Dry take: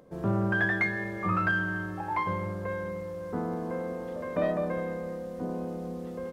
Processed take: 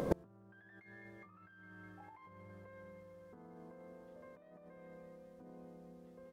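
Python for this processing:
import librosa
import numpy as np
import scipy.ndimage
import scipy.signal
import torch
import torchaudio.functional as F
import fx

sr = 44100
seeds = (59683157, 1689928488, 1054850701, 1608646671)

y = fx.echo_wet_highpass(x, sr, ms=205, feedback_pct=81, hz=2300.0, wet_db=-14)
y = fx.over_compress(y, sr, threshold_db=-34.0, ratio=-1.0)
y = fx.gate_flip(y, sr, shuts_db=-34.0, range_db=-38)
y = F.gain(torch.from_numpy(y), 15.5).numpy()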